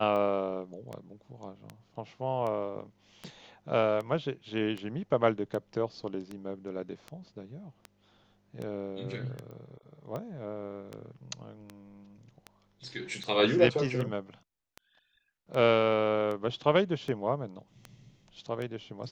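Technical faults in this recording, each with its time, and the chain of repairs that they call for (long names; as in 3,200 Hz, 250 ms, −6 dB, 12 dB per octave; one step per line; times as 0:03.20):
scratch tick 78 rpm −25 dBFS
0:09.51: click −36 dBFS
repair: click removal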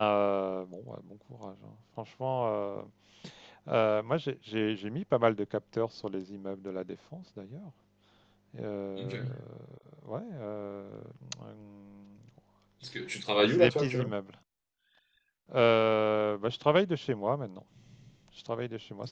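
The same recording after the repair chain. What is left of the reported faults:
none of them is left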